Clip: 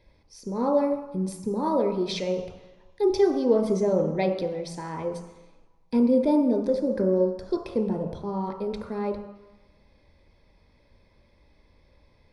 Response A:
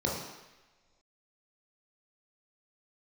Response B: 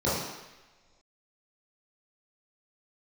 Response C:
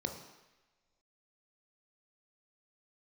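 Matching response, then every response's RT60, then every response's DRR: C; non-exponential decay, non-exponential decay, non-exponential decay; −3.5, −10.5, 3.5 decibels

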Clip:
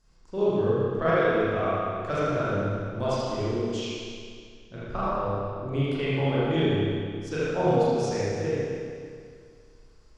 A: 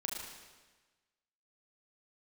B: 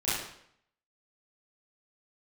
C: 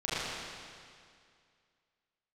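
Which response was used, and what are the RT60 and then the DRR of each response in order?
C; 1.3, 0.70, 2.2 seconds; −2.0, −12.5, −11.5 decibels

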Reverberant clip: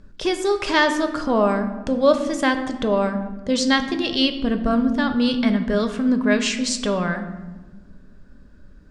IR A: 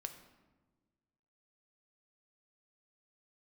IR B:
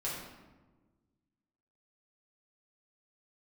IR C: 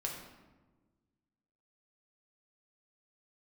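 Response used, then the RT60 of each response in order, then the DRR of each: A; 1.3, 1.3, 1.3 seconds; 6.5, −7.0, −1.0 decibels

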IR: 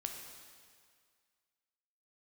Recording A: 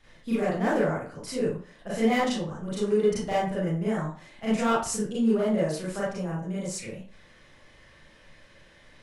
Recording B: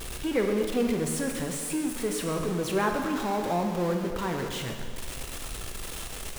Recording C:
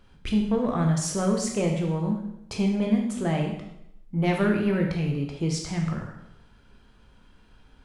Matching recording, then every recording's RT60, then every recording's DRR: B; 0.40, 2.0, 0.80 seconds; −9.0, 2.5, 0.5 decibels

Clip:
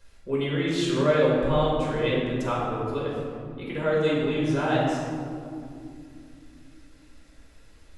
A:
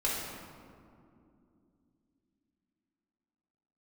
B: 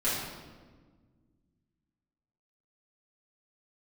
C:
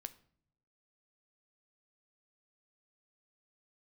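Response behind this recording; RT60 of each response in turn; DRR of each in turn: A; 2.6 s, 1.5 s, non-exponential decay; −6.5, −11.5, 11.0 decibels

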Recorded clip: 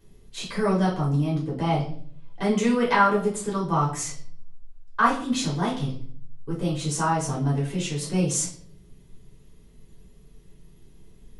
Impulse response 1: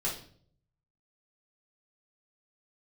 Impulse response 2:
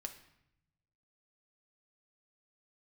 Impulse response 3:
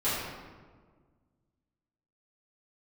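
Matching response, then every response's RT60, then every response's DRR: 1; 0.55, 0.75, 1.6 seconds; −6.5, 5.0, −13.5 decibels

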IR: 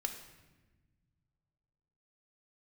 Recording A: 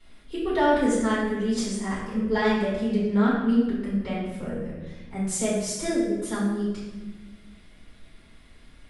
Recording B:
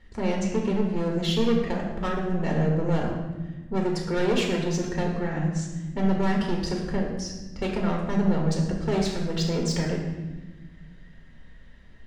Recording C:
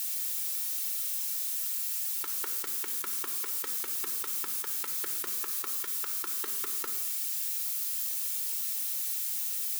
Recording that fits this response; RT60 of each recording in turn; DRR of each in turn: C; 1.2, 1.2, 1.2 seconds; −10.0, −1.5, 5.0 decibels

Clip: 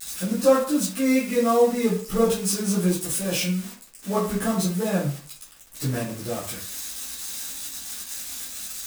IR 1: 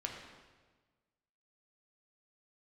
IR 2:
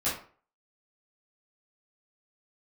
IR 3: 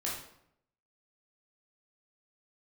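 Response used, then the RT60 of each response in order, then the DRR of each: 2; 1.4, 0.45, 0.75 seconds; 0.0, −11.5, −5.5 decibels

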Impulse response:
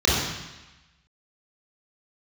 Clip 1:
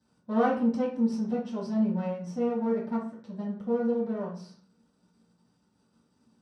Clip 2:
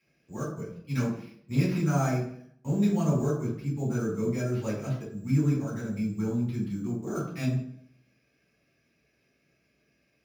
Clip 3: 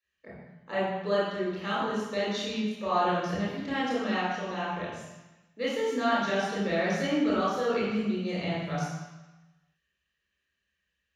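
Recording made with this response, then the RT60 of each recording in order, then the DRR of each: 3; 0.45, 0.65, 1.1 seconds; −8.5, −5.0, −8.5 decibels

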